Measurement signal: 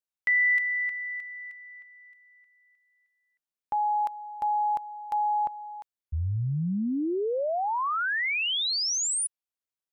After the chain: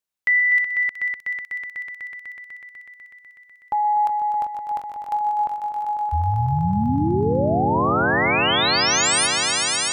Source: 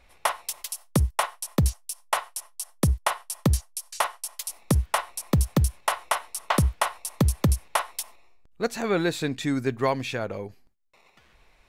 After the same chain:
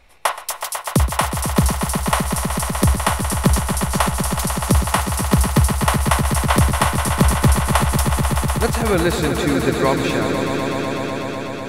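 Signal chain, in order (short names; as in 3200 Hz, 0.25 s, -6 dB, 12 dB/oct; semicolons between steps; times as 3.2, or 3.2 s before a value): swelling echo 0.124 s, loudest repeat 5, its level -8.5 dB; gain +5.5 dB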